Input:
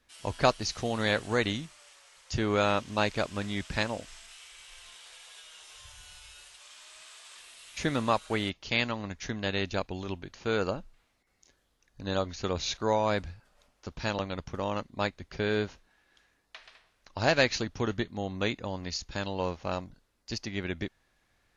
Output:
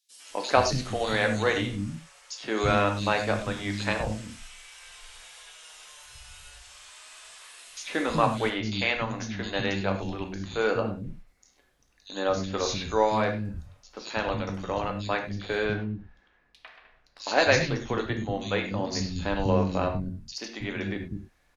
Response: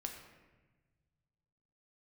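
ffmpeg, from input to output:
-filter_complex "[0:a]asettb=1/sr,asplit=3[link_01][link_02][link_03];[link_01]atrim=end=15.634[link_04];[link_02]atrim=start=15.63:end=17.2,asetpts=PTS-STARTPTS,afade=type=in:duration=0.004:curve=qsin,afade=type=out:start_time=1.566:duration=0.004:curve=qsin,adynamicsmooth=sensitivity=6.5:basefreq=3200[link_05];[link_03]atrim=start=17.196[link_06];[link_04][link_05]acrossfade=duration=0.004:curve1=hsin:curve2=qsin[link_07];[link_07][link_06]acrossfade=duration=0.004:curve1=qsin:curve2=hsin,asettb=1/sr,asplit=3[link_08][link_09][link_10];[link_08]atrim=end=18.704[link_11];[link_09]atrim=start=18.7:end=19.79,asetpts=PTS-STARTPTS,afade=type=in:duration=0.004:curve=qsin,afade=type=out:start_time=1.086:duration=0.004:curve=qsin,lowshelf=frequency=390:gain=9.5[link_12];[link_10]atrim=start=19.786[link_13];[link_11][link_12]acrossfade=duration=0.004:curve1=hsin:curve2=qsin[link_14];[link_14][link_13]acrossfade=duration=0.004:curve1=qsin:curve2=hsin,acrossover=split=260|3700[link_15][link_16][link_17];[link_16]adelay=100[link_18];[link_15]adelay=300[link_19];[link_19][link_18][link_17]amix=inputs=3:normalize=0[link_20];[1:a]atrim=start_sample=2205,afade=type=out:start_time=0.16:duration=0.01,atrim=end_sample=7497[link_21];[link_20][link_21]afir=irnorm=-1:irlink=0,volume=6.5dB"

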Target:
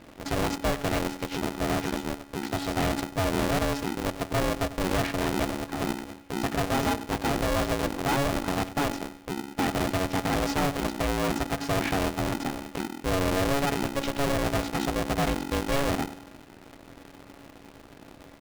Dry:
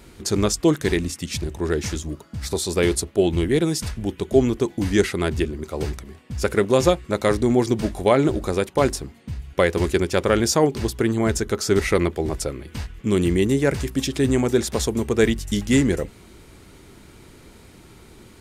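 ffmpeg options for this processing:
ffmpeg -i in.wav -filter_complex "[0:a]aeval=exprs='if(lt(val(0),0),0.251*val(0),val(0))':channel_layout=same,lowpass=3000,asoftclip=type=hard:threshold=-22dB,asplit=2[link_01][link_02];[link_02]adelay=96,lowpass=frequency=890:poles=1,volume=-14dB,asplit=2[link_03][link_04];[link_04]adelay=96,lowpass=frequency=890:poles=1,volume=0.4,asplit=2[link_05][link_06];[link_06]adelay=96,lowpass=frequency=890:poles=1,volume=0.4,asplit=2[link_07][link_08];[link_08]adelay=96,lowpass=frequency=890:poles=1,volume=0.4[link_09];[link_01][link_03][link_05][link_07][link_09]amix=inputs=5:normalize=0,aeval=exprs='val(0)*sgn(sin(2*PI*280*n/s))':channel_layout=same" out.wav

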